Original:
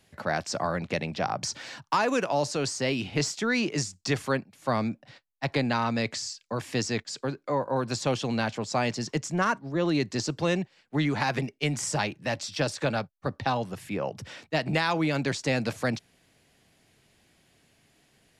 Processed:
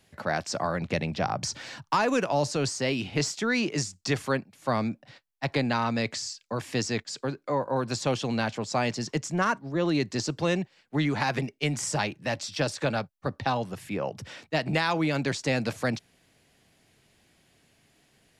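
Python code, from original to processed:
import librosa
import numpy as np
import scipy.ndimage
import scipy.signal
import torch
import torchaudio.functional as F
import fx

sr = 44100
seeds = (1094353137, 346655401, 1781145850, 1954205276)

y = fx.low_shelf(x, sr, hz=130.0, db=8.5, at=(0.81, 2.69))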